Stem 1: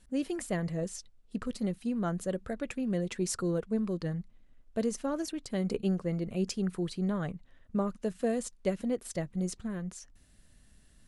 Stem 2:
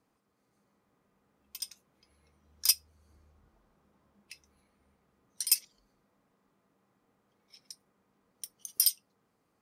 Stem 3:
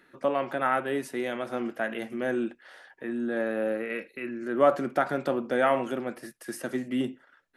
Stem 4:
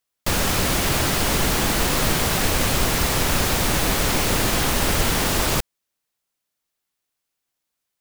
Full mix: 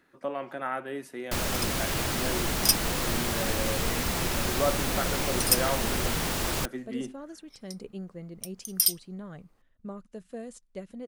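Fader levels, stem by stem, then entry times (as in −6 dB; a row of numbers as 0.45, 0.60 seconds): −9.5, +2.5, −6.5, −8.5 decibels; 2.10, 0.00, 0.00, 1.05 seconds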